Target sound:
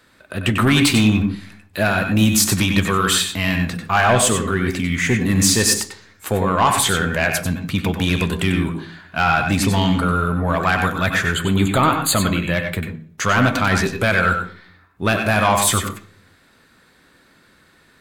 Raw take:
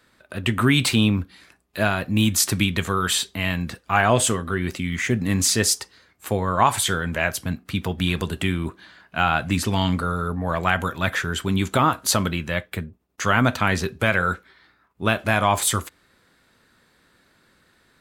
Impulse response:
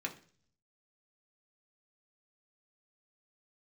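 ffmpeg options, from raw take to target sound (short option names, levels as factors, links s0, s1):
-filter_complex "[0:a]asoftclip=type=tanh:threshold=0.224,asettb=1/sr,asplit=3[s0][s1][s2];[s0]atrim=end=11.344[s3];[s1]atrim=start=11.34:end=12.54,asetpts=PTS-STARTPTS,afade=t=in:d=0.004:c=qsin,afade=t=out:st=1.196:d=0.004:c=qsin,asuperstop=centerf=5500:order=12:qfactor=3.3[s4];[s2]atrim=start=12.536[s5];[s3][s4]acrossfade=d=0.004:c1=hsin:c2=qsin[s6];[s6][s5]acrossfade=d=0.004:c1=qsin:c2=hsin,asplit=2[s7][s8];[1:a]atrim=start_sample=2205,adelay=94[s9];[s8][s9]afir=irnorm=-1:irlink=0,volume=0.501[s10];[s7][s10]amix=inputs=2:normalize=0,volume=1.78"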